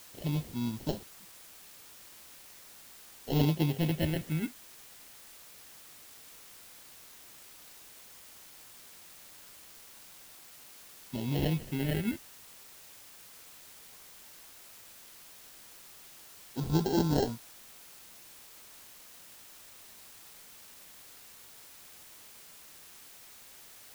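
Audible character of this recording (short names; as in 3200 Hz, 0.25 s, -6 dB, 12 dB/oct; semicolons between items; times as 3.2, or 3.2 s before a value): aliases and images of a low sample rate 1200 Hz, jitter 0%; phasing stages 4, 0.13 Hz, lowest notch 740–2200 Hz; a quantiser's noise floor 8-bit, dither triangular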